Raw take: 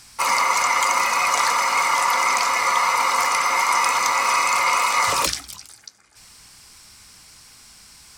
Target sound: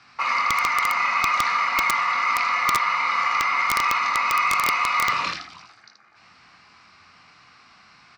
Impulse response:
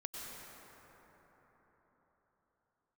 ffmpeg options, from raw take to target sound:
-filter_complex "[0:a]equalizer=f=550:t=o:w=2.9:g=-8,acrossover=split=240|1700[a][b][c];[b]acompressor=threshold=-36dB:ratio=12[d];[a][d][c]amix=inputs=3:normalize=0,highpass=170,equalizer=f=710:t=q:w=4:g=7,equalizer=f=1.2k:t=q:w=4:g=9,equalizer=f=3.3k:t=q:w=4:g=-9,lowpass=f=3.5k:w=0.5412,lowpass=f=3.5k:w=1.3066,aecho=1:1:23|55|79:0.501|0.141|0.562,aeval=exprs='(mod(4.73*val(0)+1,2)-1)/4.73':c=same,volume=2.5dB"

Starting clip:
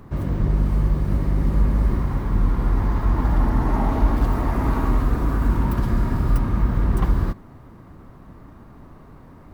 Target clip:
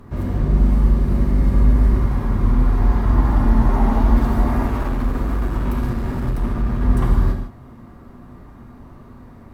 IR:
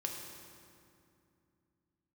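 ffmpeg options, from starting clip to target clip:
-filter_complex "[0:a]asettb=1/sr,asplit=3[a][b][c];[a]atrim=end=4.664[d];[b]atrim=start=4.66:end=6.81,asetpts=PTS-STARTPTS,afade=t=in:d=0.004:c=qsin,afade=t=out:st=2.146:d=0.004:c=qsin,volume=21.5dB,asoftclip=hard,volume=-21.5dB[e];[c]atrim=start=6.806[f];[d][e]acrossfade=d=0.004:c1=hsin:c2=qsin[g];[g][f]acrossfade=d=0.004:c1=qsin:c2=hsin[h];[1:a]atrim=start_sample=2205,afade=t=out:st=0.17:d=0.01,atrim=end_sample=7938,asetrate=30429,aresample=44100[i];[h][i]afir=irnorm=-1:irlink=0"

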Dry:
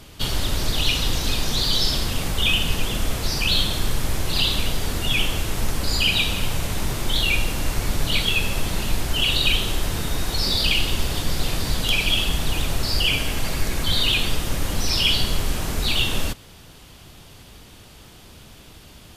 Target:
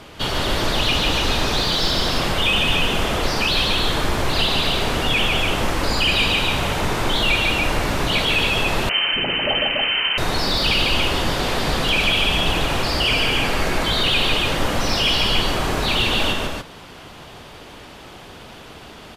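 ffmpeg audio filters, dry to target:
-filter_complex "[0:a]aecho=1:1:148.7|285.7:0.631|0.562,asplit=2[a][b];[b]highpass=f=720:p=1,volume=17dB,asoftclip=type=tanh:threshold=-3dB[c];[a][c]amix=inputs=2:normalize=0,lowpass=f=1.1k:p=1,volume=-6dB,asettb=1/sr,asplit=3[d][e][f];[d]atrim=end=8.894[g];[e]atrim=start=8.89:end=10.18,asetpts=PTS-STARTPTS,afade=t=in:d=0.004:c=qsin,afade=t=out:st=1.286:d=0.004:c=qsin,lowpass=f=2.6k:t=q:w=0.5098,lowpass=f=2.6k:t=q:w=0.6013,lowpass=f=2.6k:t=q:w=0.9,lowpass=f=2.6k:t=q:w=2.563,afreqshift=-3100[h];[f]atrim=start=10.176[i];[g][h]acrossfade=d=0.004:c1=hsin:c2=qsin[j];[j][i]acrossfade=d=0.004:c1=qsin:c2=hsin,volume=1.5dB"

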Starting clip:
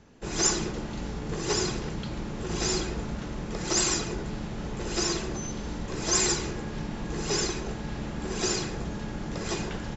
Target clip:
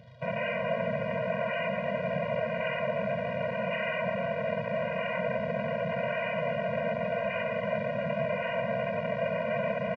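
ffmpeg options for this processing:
-filter_complex "[0:a]bandreject=f=50:t=h:w=6,bandreject=f=100:t=h:w=6,bandreject=f=150:t=h:w=6,bandreject=f=200:t=h:w=6,bandreject=f=250:t=h:w=6,bandreject=f=300:t=h:w=6,bandreject=f=350:t=h:w=6,bandreject=f=400:t=h:w=6,bandreject=f=450:t=h:w=6,afwtdn=0.0224,lowshelf=f=330:g=11.5,aecho=1:1:6.5:0.71,asplit=2[a][b];[b]alimiter=limit=-16.5dB:level=0:latency=1:release=21,volume=0dB[c];[a][c]amix=inputs=2:normalize=0,aeval=exprs='val(0)+0.0282*(sin(2*PI*50*n/s)+sin(2*PI*2*50*n/s)/2+sin(2*PI*3*50*n/s)/3+sin(2*PI*4*50*n/s)/4+sin(2*PI*5*50*n/s)/5)':c=same,aresample=11025,aeval=exprs='(mod(12.6*val(0)+1,2)-1)/12.6':c=same,aresample=44100,aecho=1:1:17|73:0.237|0.211,asetrate=22696,aresample=44100,atempo=1.94306,acrusher=bits=7:mix=0:aa=0.000001,highpass=f=140:w=0.5412,highpass=f=140:w=1.3066,equalizer=f=350:t=q:w=4:g=-7,equalizer=f=650:t=q:w=4:g=9,equalizer=f=1.2k:t=q:w=4:g=-8,lowpass=f=4.2k:w=0.5412,lowpass=f=4.2k:w=1.3066,afftfilt=real='re*eq(mod(floor(b*sr/1024/230),2),0)':imag='im*eq(mod(floor(b*sr/1024/230),2),0)':win_size=1024:overlap=0.75,volume=-1.5dB"

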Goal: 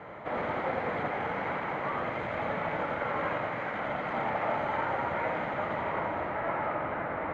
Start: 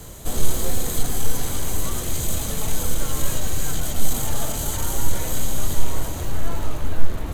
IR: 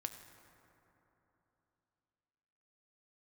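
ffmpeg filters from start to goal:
-filter_complex "[0:a]aeval=exprs='0.158*(abs(mod(val(0)/0.158+3,4)-2)-1)':c=same,highpass=250,equalizer=f=260:t=q:w=4:g=-4,equalizer=f=380:t=q:w=4:g=-5,equalizer=f=600:t=q:w=4:g=5,equalizer=f=860:t=q:w=4:g=6,equalizer=f=1.3k:t=q:w=4:g=5,equalizer=f=2.1k:t=q:w=4:g=9,lowpass=f=2.1k:w=0.5412,lowpass=f=2.1k:w=1.3066,asplit=2[a][b];[1:a]atrim=start_sample=2205,adelay=85[c];[b][c]afir=irnorm=-1:irlink=0,volume=-2.5dB[d];[a][d]amix=inputs=2:normalize=0"

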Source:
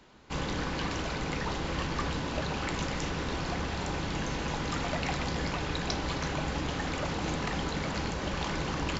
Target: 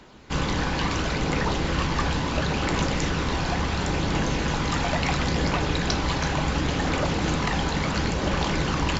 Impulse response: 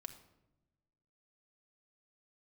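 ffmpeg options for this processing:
-af "aphaser=in_gain=1:out_gain=1:delay=1.3:decay=0.21:speed=0.72:type=triangular,volume=7dB"

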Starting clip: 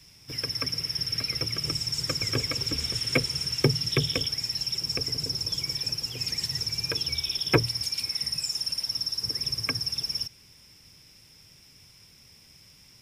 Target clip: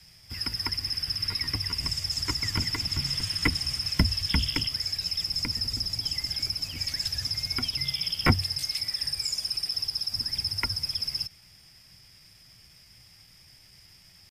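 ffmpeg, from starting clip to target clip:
-af "afreqshift=-210,atempo=0.91"

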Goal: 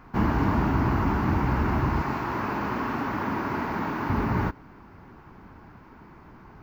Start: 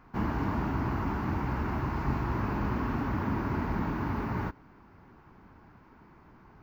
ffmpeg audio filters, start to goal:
-filter_complex "[0:a]asettb=1/sr,asplit=3[a][b][c];[a]atrim=end=2.024[d];[b]atrim=start=2.02:end=4.1,asetpts=PTS-STARTPTS,afade=t=in:d=0.004:c=qsin,afade=t=out:st=2.076:d=0.004:c=qsin,highpass=f=400:p=1[e];[c]atrim=start=4.096[f];[d][e]acrossfade=d=0.004:c1=hsin:c2=qsin[g];[g][f]acrossfade=d=0.004:c1=qsin:c2=hsin,volume=7dB"

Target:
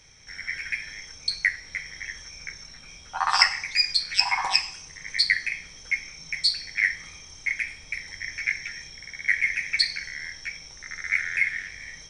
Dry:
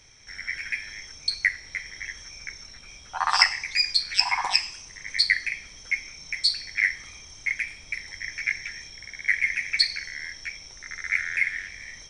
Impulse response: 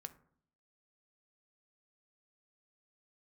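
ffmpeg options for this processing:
-filter_complex "[1:a]atrim=start_sample=2205[a];[0:a][a]afir=irnorm=-1:irlink=0,volume=5.5dB"

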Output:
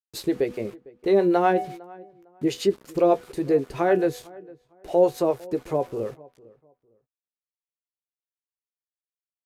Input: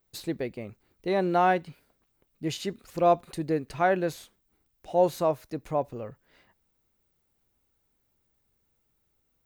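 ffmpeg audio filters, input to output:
-filter_complex "[0:a]equalizer=f=400:w=2:g=11.5,bandreject=f=246:t=h:w=4,bandreject=f=492:t=h:w=4,bandreject=f=738:t=h:w=4,bandreject=f=984:t=h:w=4,bandreject=f=1.23k:t=h:w=4,bandreject=f=1.476k:t=h:w=4,bandreject=f=1.722k:t=h:w=4,bandreject=f=1.968k:t=h:w=4,bandreject=f=2.214k:t=h:w=4,bandreject=f=2.46k:t=h:w=4,bandreject=f=2.706k:t=h:w=4,bandreject=f=2.952k:t=h:w=4,bandreject=f=3.198k:t=h:w=4,bandreject=f=3.444k:t=h:w=4,bandreject=f=3.69k:t=h:w=4,bandreject=f=3.936k:t=h:w=4,bandreject=f=4.182k:t=h:w=4,bandreject=f=4.428k:t=h:w=4,bandreject=f=4.674k:t=h:w=4,asplit=2[a][b];[b]acompressor=threshold=-27dB:ratio=6,volume=1.5dB[c];[a][c]amix=inputs=2:normalize=0,acrossover=split=460[d][e];[d]aeval=exprs='val(0)*(1-0.7/2+0.7/2*cos(2*PI*7.8*n/s))':c=same[f];[e]aeval=exprs='val(0)*(1-0.7/2-0.7/2*cos(2*PI*7.8*n/s))':c=same[g];[f][g]amix=inputs=2:normalize=0,aeval=exprs='val(0)*gte(abs(val(0)),0.00596)':c=same,asplit=2[h][i];[i]adelay=15,volume=-10.5dB[j];[h][j]amix=inputs=2:normalize=0,asplit=2[k][l];[l]adelay=454,lowpass=f=1.5k:p=1,volume=-22dB,asplit=2[m][n];[n]adelay=454,lowpass=f=1.5k:p=1,volume=0.26[o];[m][o]amix=inputs=2:normalize=0[p];[k][p]amix=inputs=2:normalize=0,aresample=32000,aresample=44100"

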